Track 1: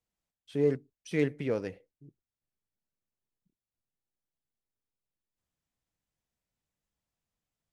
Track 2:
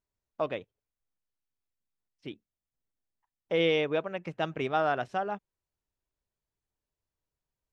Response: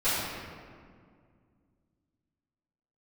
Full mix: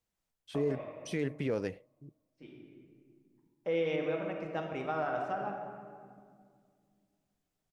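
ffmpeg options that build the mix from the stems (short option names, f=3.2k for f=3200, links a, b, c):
-filter_complex "[0:a]volume=2dB,asplit=2[a][b];[1:a]equalizer=f=3.4k:t=o:w=0.64:g=-8,adelay=150,volume=-7.5dB,asplit=2[c][d];[d]volume=-13dB[e];[b]apad=whole_len=347242[f];[c][f]sidechaincompress=threshold=-42dB:ratio=8:attack=16:release=1280[g];[2:a]atrim=start_sample=2205[h];[e][h]afir=irnorm=-1:irlink=0[i];[a][g][i]amix=inputs=3:normalize=0,alimiter=limit=-23dB:level=0:latency=1:release=70"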